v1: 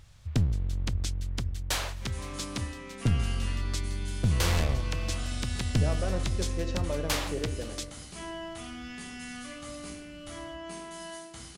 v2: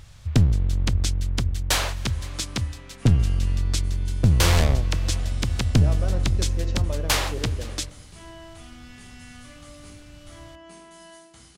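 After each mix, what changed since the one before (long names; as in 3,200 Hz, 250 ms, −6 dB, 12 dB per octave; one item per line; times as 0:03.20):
first sound +8.0 dB
second sound −5.0 dB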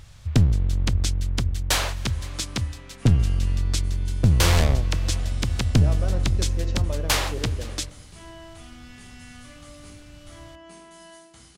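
nothing changed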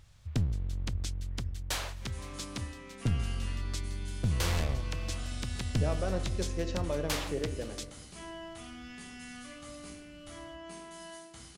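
first sound −12.0 dB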